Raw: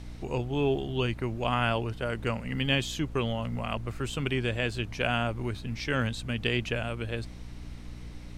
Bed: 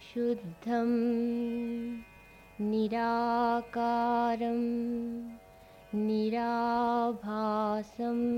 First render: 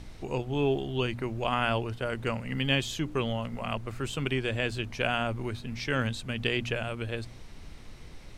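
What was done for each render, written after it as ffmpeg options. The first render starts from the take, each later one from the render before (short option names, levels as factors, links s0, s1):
-af "bandreject=f=60:t=h:w=4,bandreject=f=120:t=h:w=4,bandreject=f=180:t=h:w=4,bandreject=f=240:t=h:w=4,bandreject=f=300:t=h:w=4"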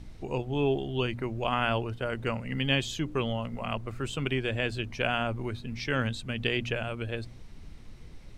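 -af "afftdn=nr=6:nf=-47"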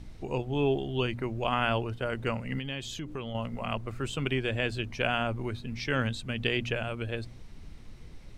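-filter_complex "[0:a]asettb=1/sr,asplit=3[s0][s1][s2];[s0]atrim=end=2.594[s3];[s1]atrim=start=2.59:end=3.35,asetpts=PTS-STARTPTS,afade=t=in:d=0.004:c=qsin,afade=t=out:st=0.756:d=0.004:c=qsin,acompressor=threshold=0.0178:ratio=3:attack=3.2:release=140:knee=1:detection=peak[s4];[s2]atrim=start=3.346[s5];[s3][s4]acrossfade=d=0.004:c1=hsin:c2=qsin[s6];[s6][s5]acrossfade=d=0.004:c1=qsin:c2=hsin"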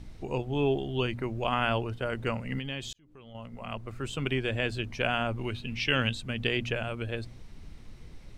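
-filter_complex "[0:a]asettb=1/sr,asplit=3[s0][s1][s2];[s0]atrim=end=5.384[s3];[s1]atrim=start=5.38:end=6.14,asetpts=PTS-STARTPTS,afade=t=in:d=0.004:c=qsin,afade=t=out:st=0.756:d=0.004:c=qsin,equalizer=f=2800:w=3:g=13.5[s4];[s2]atrim=start=6.136[s5];[s3][s4]acrossfade=d=0.004:c1=hsin:c2=qsin[s6];[s6][s5]acrossfade=d=0.004:c1=qsin:c2=hsin,asplit=2[s7][s8];[s7]atrim=end=2.93,asetpts=PTS-STARTPTS,afade=t=out:st=2.926:d=0.004:c=hsin[s9];[s8]atrim=start=2.93,asetpts=PTS-STARTPTS,afade=t=in:d=1.37[s10];[s9][s10]concat=n=2:v=0:a=1"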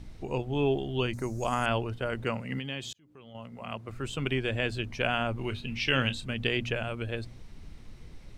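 -filter_complex "[0:a]asettb=1/sr,asplit=3[s0][s1][s2];[s0]atrim=end=1.134[s3];[s1]atrim=start=1.13:end=1.66,asetpts=PTS-STARTPTS,afade=t=in:d=0.004:c=qsin,afade=t=out:st=0.526:d=0.004:c=qsin,highshelf=f=4400:t=q:w=3:g=13.5[s4];[s2]atrim=start=1.656[s5];[s3][s4]acrossfade=d=0.004:c1=hsin:c2=qsin[s6];[s6][s5]acrossfade=d=0.004:c1=qsin:c2=hsin,asettb=1/sr,asplit=3[s7][s8][s9];[s7]atrim=end=2.244[s10];[s8]atrim=start=2.24:end=3.89,asetpts=PTS-STARTPTS,afade=t=in:d=0.004:c=qsin,afade=t=out:st=1.646:d=0.004:c=qsin,highpass=100[s11];[s9]atrim=start=3.886[s12];[s10][s11]acrossfade=d=0.004:c1=hsin:c2=qsin[s13];[s13][s12]acrossfade=d=0.004:c1=qsin:c2=hsin,asettb=1/sr,asplit=3[s14][s15][s16];[s14]atrim=end=5.334[s17];[s15]atrim=start=5.33:end=6.34,asetpts=PTS-STARTPTS,afade=t=in:d=0.004:c=qsin,afade=t=out:st=1.006:d=0.004:c=qsin,asplit=2[s18][s19];[s19]adelay=30,volume=0.237[s20];[s18][s20]amix=inputs=2:normalize=0,atrim=end_sample=44541[s21];[s16]atrim=start=6.336[s22];[s17][s21]acrossfade=d=0.004:c1=hsin:c2=qsin[s23];[s23][s22]acrossfade=d=0.004:c1=qsin:c2=hsin"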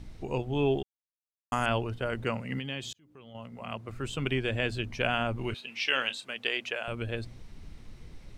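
-filter_complex "[0:a]asettb=1/sr,asplit=3[s0][s1][s2];[s0]atrim=end=5.544[s3];[s1]atrim=start=5.54:end=6.88,asetpts=PTS-STARTPTS,afade=t=in:d=0.004:c=qsin,afade=t=out:st=1.336:d=0.004:c=qsin,highpass=540[s4];[s2]atrim=start=6.876[s5];[s3][s4]acrossfade=d=0.004:c1=hsin:c2=qsin[s6];[s6][s5]acrossfade=d=0.004:c1=qsin:c2=hsin,asplit=3[s7][s8][s9];[s7]atrim=end=0.83,asetpts=PTS-STARTPTS,afade=t=out:st=0.826:d=0.004:c=hsin[s10];[s8]atrim=start=0.83:end=1.52,asetpts=PTS-STARTPTS,volume=0[s11];[s9]atrim=start=1.52,asetpts=PTS-STARTPTS,afade=t=in:d=0.004:c=hsin[s12];[s10][s11][s12]concat=n=3:v=0:a=1"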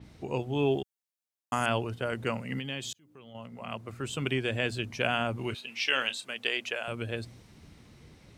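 -af "highpass=90,adynamicequalizer=threshold=0.00398:dfrequency=5300:dqfactor=0.7:tfrequency=5300:tqfactor=0.7:attack=5:release=100:ratio=0.375:range=3:mode=boostabove:tftype=highshelf"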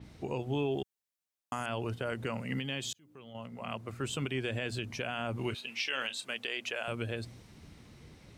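-af "alimiter=limit=0.075:level=0:latency=1:release=106"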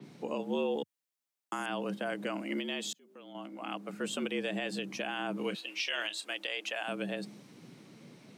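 -af "afreqshift=87"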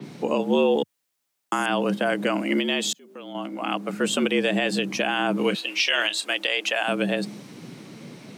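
-af "volume=3.98"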